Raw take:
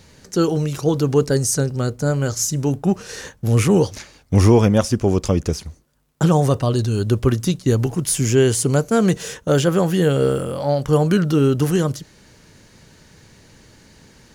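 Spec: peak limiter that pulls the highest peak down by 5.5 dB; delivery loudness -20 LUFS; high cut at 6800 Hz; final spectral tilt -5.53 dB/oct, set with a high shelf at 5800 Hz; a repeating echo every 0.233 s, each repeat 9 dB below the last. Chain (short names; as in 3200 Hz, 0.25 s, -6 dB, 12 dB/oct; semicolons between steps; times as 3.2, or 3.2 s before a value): LPF 6800 Hz; high shelf 5800 Hz +8.5 dB; limiter -9.5 dBFS; feedback echo 0.233 s, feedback 35%, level -9 dB; gain -0.5 dB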